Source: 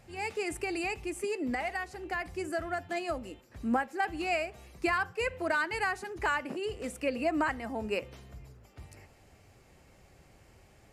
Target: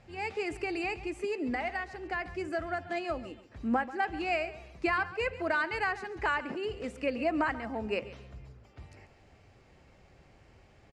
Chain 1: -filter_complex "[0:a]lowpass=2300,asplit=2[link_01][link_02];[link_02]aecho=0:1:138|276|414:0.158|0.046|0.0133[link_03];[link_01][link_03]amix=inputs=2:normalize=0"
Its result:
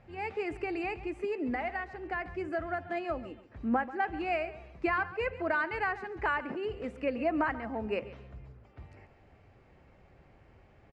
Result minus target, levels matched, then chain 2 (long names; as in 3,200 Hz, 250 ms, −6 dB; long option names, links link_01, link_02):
4,000 Hz band −5.5 dB
-filter_complex "[0:a]lowpass=4800,asplit=2[link_01][link_02];[link_02]aecho=0:1:138|276|414:0.158|0.046|0.0133[link_03];[link_01][link_03]amix=inputs=2:normalize=0"